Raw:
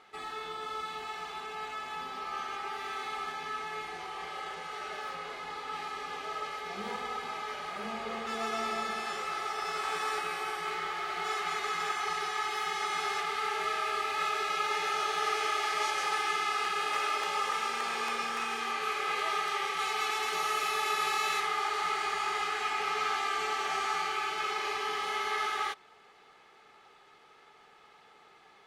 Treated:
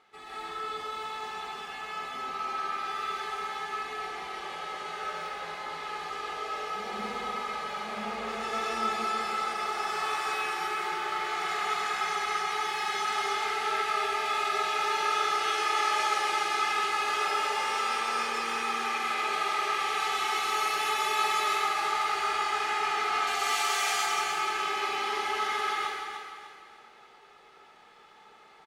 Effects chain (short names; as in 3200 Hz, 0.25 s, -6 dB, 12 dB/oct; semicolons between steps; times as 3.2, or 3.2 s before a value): 23.27–23.9 RIAA curve recording; on a send: feedback echo 0.298 s, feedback 39%, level -8 dB; on the sum: plate-style reverb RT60 1.3 s, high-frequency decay 0.9×, pre-delay 0.11 s, DRR -7 dB; gain -5.5 dB